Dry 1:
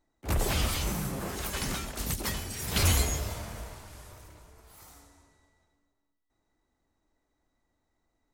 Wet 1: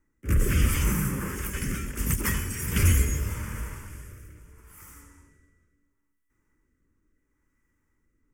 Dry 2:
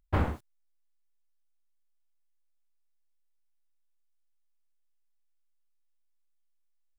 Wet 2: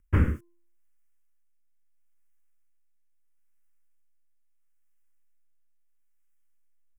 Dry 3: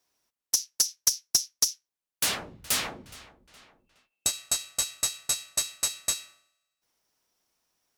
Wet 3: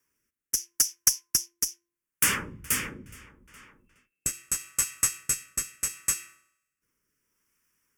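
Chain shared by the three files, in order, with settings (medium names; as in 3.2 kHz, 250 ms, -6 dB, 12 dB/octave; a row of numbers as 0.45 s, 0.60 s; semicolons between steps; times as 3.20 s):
static phaser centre 1.7 kHz, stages 4; de-hum 344.2 Hz, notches 3; rotary cabinet horn 0.75 Hz; normalise loudness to -27 LUFS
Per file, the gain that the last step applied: +8.0 dB, +9.0 dB, +7.5 dB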